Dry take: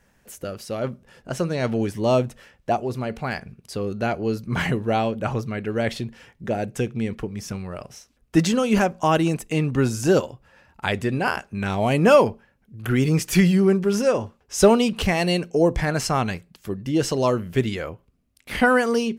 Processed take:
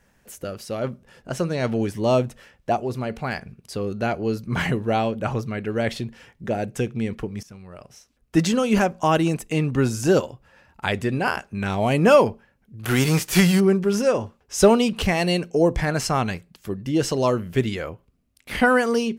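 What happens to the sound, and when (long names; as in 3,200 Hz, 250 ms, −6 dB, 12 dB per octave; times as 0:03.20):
0:07.43–0:08.52: fade in, from −16 dB
0:12.83–0:13.59: spectral envelope flattened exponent 0.6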